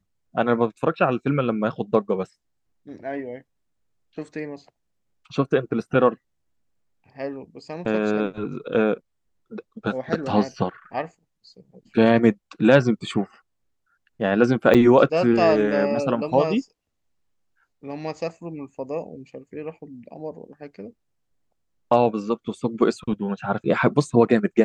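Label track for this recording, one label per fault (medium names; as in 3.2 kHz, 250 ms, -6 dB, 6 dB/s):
14.740000	14.750000	dropout 7.6 ms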